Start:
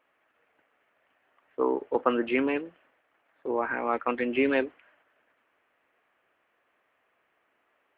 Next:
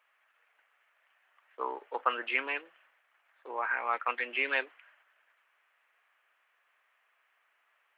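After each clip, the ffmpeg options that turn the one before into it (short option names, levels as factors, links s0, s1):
-af "highpass=1100,volume=1.26"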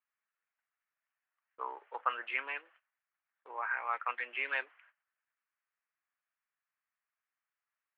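-af "bandpass=f=1400:t=q:w=0.75:csg=0,agate=range=0.126:threshold=0.00112:ratio=16:detection=peak,volume=0.708"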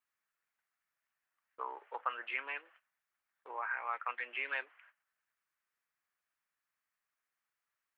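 -af "acompressor=threshold=0.00631:ratio=1.5,volume=1.26"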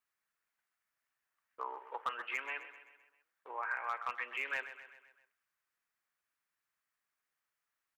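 -af "volume=23.7,asoftclip=hard,volume=0.0422,aecho=1:1:129|258|387|516|645:0.237|0.126|0.0666|0.0353|0.0187"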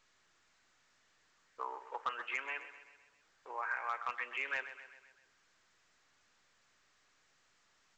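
-ar 16000 -c:a pcm_alaw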